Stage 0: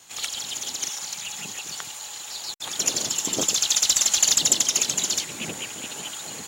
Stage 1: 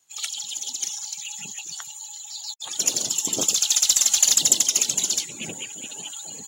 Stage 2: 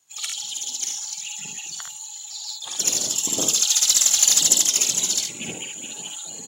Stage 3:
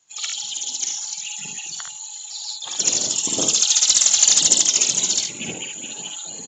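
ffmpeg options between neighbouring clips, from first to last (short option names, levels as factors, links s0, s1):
-af "highshelf=f=7400:g=7.5,afftdn=nr=19:nf=-36,volume=0.841"
-af "aecho=1:1:51|73:0.531|0.447"
-af "aresample=16000,aresample=44100,volume=1.33"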